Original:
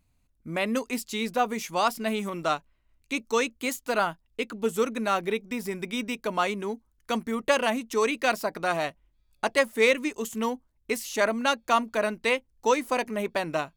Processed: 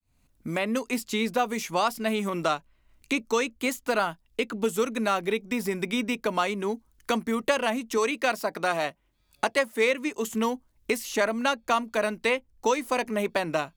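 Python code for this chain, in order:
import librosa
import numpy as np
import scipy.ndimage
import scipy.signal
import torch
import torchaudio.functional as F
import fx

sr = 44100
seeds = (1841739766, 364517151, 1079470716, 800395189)

y = fx.fade_in_head(x, sr, length_s=1.14)
y = fx.highpass(y, sr, hz=180.0, slope=6, at=(7.97, 10.27))
y = fx.band_squash(y, sr, depth_pct=70)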